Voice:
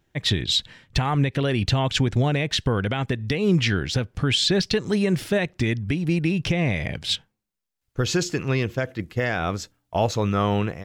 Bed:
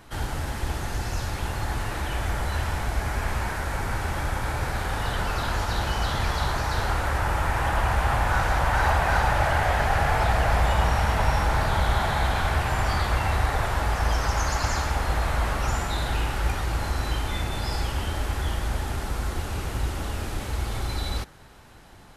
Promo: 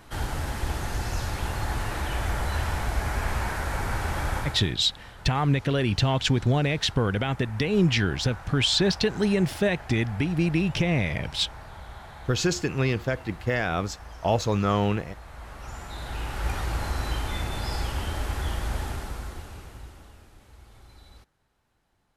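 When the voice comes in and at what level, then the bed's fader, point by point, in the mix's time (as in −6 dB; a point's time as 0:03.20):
4.30 s, −1.5 dB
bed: 0:04.39 −0.5 dB
0:04.78 −19.5 dB
0:15.25 −19.5 dB
0:16.56 −2 dB
0:18.84 −2 dB
0:20.31 −22.5 dB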